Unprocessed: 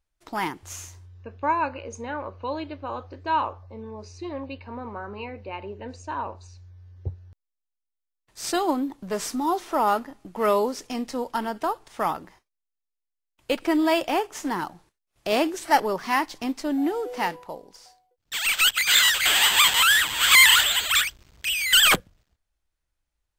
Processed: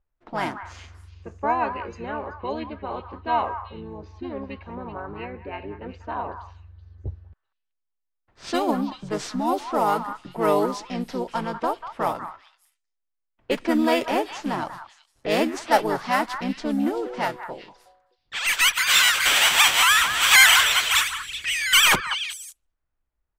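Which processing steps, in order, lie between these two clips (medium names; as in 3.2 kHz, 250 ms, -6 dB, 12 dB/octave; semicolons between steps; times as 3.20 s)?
level-controlled noise filter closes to 1.8 kHz, open at -20.5 dBFS; harmony voices -5 st -3 dB; repeats whose band climbs or falls 190 ms, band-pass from 1.3 kHz, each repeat 1.4 oct, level -7 dB; trim -1 dB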